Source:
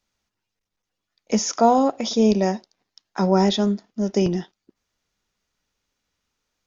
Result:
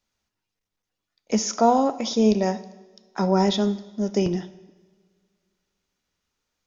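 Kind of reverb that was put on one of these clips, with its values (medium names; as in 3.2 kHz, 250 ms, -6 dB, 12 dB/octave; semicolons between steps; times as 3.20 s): two-slope reverb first 0.96 s, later 2.4 s, from -17 dB, DRR 13 dB; trim -2 dB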